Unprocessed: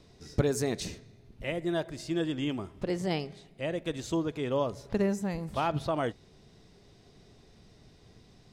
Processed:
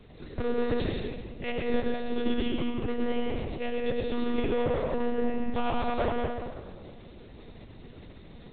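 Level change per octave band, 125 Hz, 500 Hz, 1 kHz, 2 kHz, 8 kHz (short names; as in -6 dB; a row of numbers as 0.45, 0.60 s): -2.5 dB, +2.5 dB, +2.0 dB, +2.0 dB, under -35 dB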